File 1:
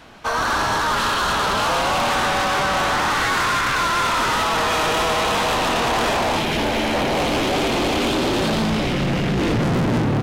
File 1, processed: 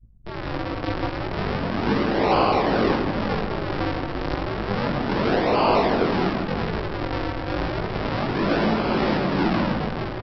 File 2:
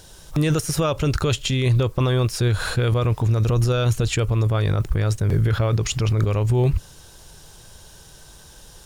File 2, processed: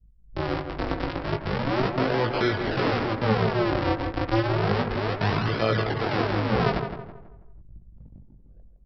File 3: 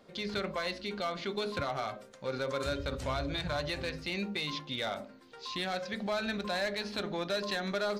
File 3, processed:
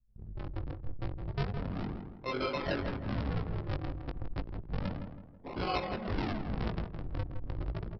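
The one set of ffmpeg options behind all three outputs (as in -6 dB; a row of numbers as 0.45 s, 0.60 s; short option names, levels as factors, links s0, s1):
-filter_complex "[0:a]aemphasis=mode=production:type=50fm,aresample=11025,acrusher=samples=30:mix=1:aa=0.000001:lfo=1:lforange=48:lforate=0.31,aresample=44100,bandreject=f=78.81:t=h:w=4,bandreject=f=157.62:t=h:w=4,bandreject=f=236.43:t=h:w=4,bandreject=f=315.24:t=h:w=4,bandreject=f=394.05:t=h:w=4,bandreject=f=472.86:t=h:w=4,bandreject=f=551.67:t=h:w=4,bandreject=f=630.48:t=h:w=4,bandreject=f=709.29:t=h:w=4,bandreject=f=788.1:t=h:w=4,bandreject=f=866.91:t=h:w=4,bandreject=f=945.72:t=h:w=4,bandreject=f=1024.53:t=h:w=4,bandreject=f=1103.34:t=h:w=4,bandreject=f=1182.15:t=h:w=4,bandreject=f=1260.96:t=h:w=4,bandreject=f=1339.77:t=h:w=4,bandreject=f=1418.58:t=h:w=4,bandreject=f=1497.39:t=h:w=4,bandreject=f=1576.2:t=h:w=4,bandreject=f=1655.01:t=h:w=4,bandreject=f=1733.82:t=h:w=4,bandreject=f=1812.63:t=h:w=4,bandreject=f=1891.44:t=h:w=4,bandreject=f=1970.25:t=h:w=4,bandreject=f=2049.06:t=h:w=4,bandreject=f=2127.87:t=h:w=4,bandreject=f=2206.68:t=h:w=4,bandreject=f=2285.49:t=h:w=4,bandreject=f=2364.3:t=h:w=4,bandreject=f=2443.11:t=h:w=4,bandreject=f=2521.92:t=h:w=4,adynamicequalizer=threshold=0.0126:dfrequency=1700:dqfactor=0.75:tfrequency=1700:tqfactor=0.75:attack=5:release=100:ratio=0.375:range=2.5:mode=boostabove:tftype=bell,acrossover=split=190|1100[s0][s1][s2];[s0]acompressor=threshold=0.0224:ratio=10[s3];[s2]alimiter=limit=0.0794:level=0:latency=1:release=109[s4];[s3][s1][s4]amix=inputs=3:normalize=0,dynaudnorm=f=130:g=7:m=1.78,tremolo=f=2.1:d=0.33,flanger=delay=18:depth=3.6:speed=0.9,anlmdn=1,asplit=2[s5][s6];[s6]adelay=163,lowpass=f=1900:p=1,volume=0.447,asplit=2[s7][s8];[s8]adelay=163,lowpass=f=1900:p=1,volume=0.41,asplit=2[s9][s10];[s10]adelay=163,lowpass=f=1900:p=1,volume=0.41,asplit=2[s11][s12];[s12]adelay=163,lowpass=f=1900:p=1,volume=0.41,asplit=2[s13][s14];[s14]adelay=163,lowpass=f=1900:p=1,volume=0.41[s15];[s5][s7][s9][s11][s13][s15]amix=inputs=6:normalize=0"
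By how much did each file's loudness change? -4.0 LU, -4.5 LU, -2.5 LU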